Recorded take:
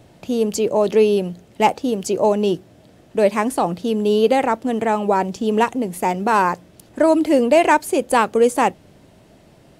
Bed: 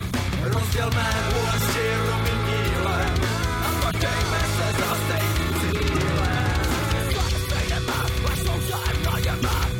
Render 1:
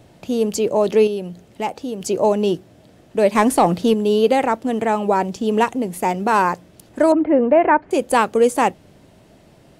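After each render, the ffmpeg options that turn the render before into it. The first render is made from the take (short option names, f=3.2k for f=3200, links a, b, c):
-filter_complex "[0:a]asettb=1/sr,asplit=3[a][b][c];[a]atrim=end=1.074[d];[b]atrim=start=1.07:end=2.01,asetpts=PTS-STARTPTS,afade=t=in:d=0.004:c=qsin,afade=t=out:st=0.936:d=0.004:c=qsin,acompressor=threshold=-33dB:ratio=1.5:attack=3.2:release=140:knee=1:detection=peak[e];[c]atrim=start=2.006[f];[d][e]acrossfade=d=0.004:c1=hsin:c2=qsin[g];[g][f]acrossfade=d=0.004:c1=qsin:c2=hsin,asettb=1/sr,asplit=3[h][i][j];[h]atrim=end=3.354[k];[i]atrim=start=3.35:end=3.94,asetpts=PTS-STARTPTS,afade=t=in:d=0.004:c=qsin,afade=t=out:st=0.586:d=0.004:c=qsin,acontrast=43[l];[j]atrim=start=3.936[m];[k][l]acrossfade=d=0.004:c1=hsin:c2=qsin[n];[n][m]acrossfade=d=0.004:c1=qsin:c2=hsin,asettb=1/sr,asplit=3[o][p][q];[o]atrim=end=7.124[r];[p]atrim=start=7.12:end=7.91,asetpts=PTS-STARTPTS,afade=t=in:d=0.004:c=qsin,afade=t=out:st=0.786:d=0.004:c=qsin,lowpass=f=1.9k:w=0.5412,lowpass=f=1.9k:w=1.3066[s];[q]atrim=start=7.906[t];[r][s]acrossfade=d=0.004:c1=hsin:c2=qsin[u];[u][t]acrossfade=d=0.004:c1=qsin:c2=hsin"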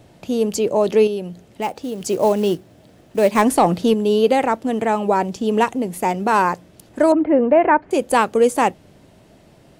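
-filter_complex "[0:a]asettb=1/sr,asplit=3[a][b][c];[a]atrim=end=1.624[d];[b]atrim=start=1.62:end=3.42,asetpts=PTS-STARTPTS,afade=t=in:d=0.004:c=qsin,afade=t=out:st=1.796:d=0.004:c=qsin,acrusher=bits=6:mode=log:mix=0:aa=0.000001[e];[c]atrim=start=3.416[f];[d][e]acrossfade=d=0.004:c1=hsin:c2=qsin[g];[g][f]acrossfade=d=0.004:c1=qsin:c2=hsin"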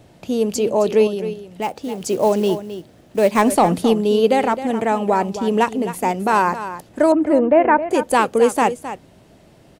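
-af "aecho=1:1:264:0.251"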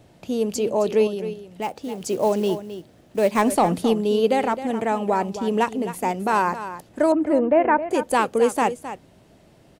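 -af "volume=-4dB"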